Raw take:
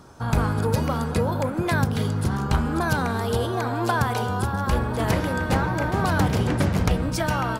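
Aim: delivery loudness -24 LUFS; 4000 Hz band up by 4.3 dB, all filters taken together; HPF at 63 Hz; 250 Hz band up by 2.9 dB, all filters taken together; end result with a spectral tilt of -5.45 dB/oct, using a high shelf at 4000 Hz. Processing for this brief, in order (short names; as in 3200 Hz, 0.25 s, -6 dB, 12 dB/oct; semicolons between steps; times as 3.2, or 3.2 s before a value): HPF 63 Hz; bell 250 Hz +4 dB; high shelf 4000 Hz -4.5 dB; bell 4000 Hz +8 dB; gain -1.5 dB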